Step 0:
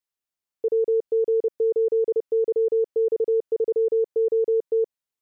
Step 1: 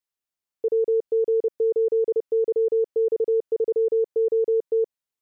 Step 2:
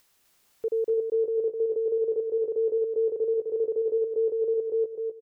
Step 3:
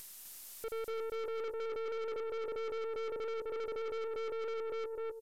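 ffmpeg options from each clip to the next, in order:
-af anull
-af "acompressor=mode=upward:threshold=-38dB:ratio=2.5,aecho=1:1:256|512|768|1024|1280:0.562|0.247|0.109|0.0479|0.0211,volume=-5dB"
-af "crystalizer=i=9.5:c=0,aeval=exprs='(tanh(56.2*val(0)+0.35)-tanh(0.35))/56.2':c=same,aresample=32000,aresample=44100,volume=-2.5dB"

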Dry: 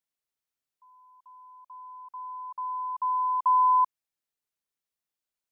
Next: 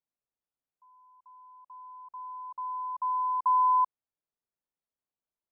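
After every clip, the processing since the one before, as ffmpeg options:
-af "lowpass=1.1k"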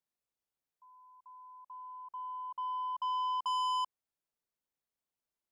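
-af "asoftclip=type=tanh:threshold=-31dB"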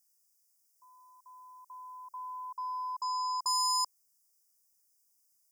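-af "aexciter=amount=3.4:drive=10:freq=2.9k,asuperstop=centerf=3300:order=20:qfactor=1.3"

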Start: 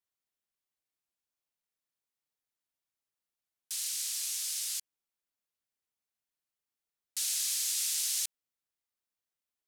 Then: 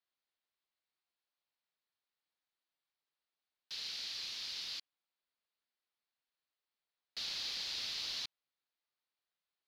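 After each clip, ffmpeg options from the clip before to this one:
-filter_complex "[0:a]asplit=2[a][b];[b]highpass=f=720:p=1,volume=12dB,asoftclip=type=tanh:threshold=-18.5dB[c];[a][c]amix=inputs=2:normalize=0,lowpass=f=1.8k:p=1,volume=-6dB,highshelf=f=6.1k:t=q:w=3:g=-12.5,volume=-4dB"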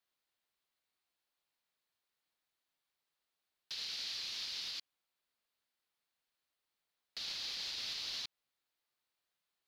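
-af "alimiter=level_in=12dB:limit=-24dB:level=0:latency=1:release=168,volume=-12dB,volume=4dB"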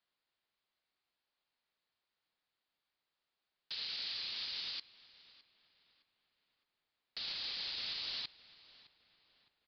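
-filter_complex "[0:a]asplit=2[a][b];[b]adelay=612,lowpass=f=2.8k:p=1,volume=-17dB,asplit=2[c][d];[d]adelay=612,lowpass=f=2.8k:p=1,volume=0.46,asplit=2[e][f];[f]adelay=612,lowpass=f=2.8k:p=1,volume=0.46,asplit=2[g][h];[h]adelay=612,lowpass=f=2.8k:p=1,volume=0.46[i];[a][c][e][g][i]amix=inputs=5:normalize=0,aresample=11025,aresample=44100,volume=1dB"

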